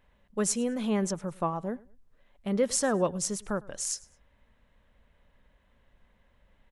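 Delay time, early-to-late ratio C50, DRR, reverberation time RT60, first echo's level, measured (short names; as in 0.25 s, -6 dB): 0.105 s, none, none, none, -23.0 dB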